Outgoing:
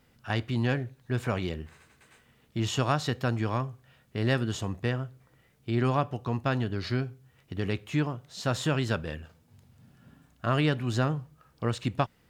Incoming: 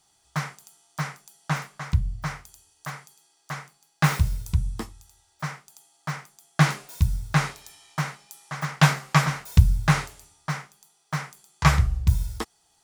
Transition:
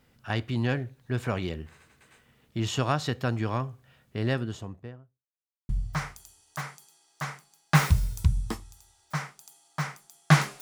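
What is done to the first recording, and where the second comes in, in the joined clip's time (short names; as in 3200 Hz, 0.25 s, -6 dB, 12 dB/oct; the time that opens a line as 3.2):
outgoing
4.03–5.28 studio fade out
5.28–5.69 mute
5.69 switch to incoming from 1.98 s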